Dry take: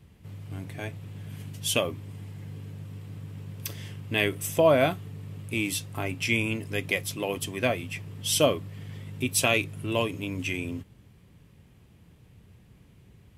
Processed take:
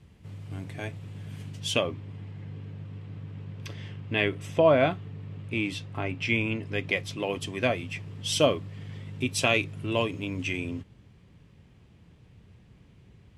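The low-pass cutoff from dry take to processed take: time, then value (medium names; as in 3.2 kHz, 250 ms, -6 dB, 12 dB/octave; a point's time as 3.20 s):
1.36 s 8.7 kHz
2.08 s 3.5 kHz
6.49 s 3.5 kHz
7.54 s 6.3 kHz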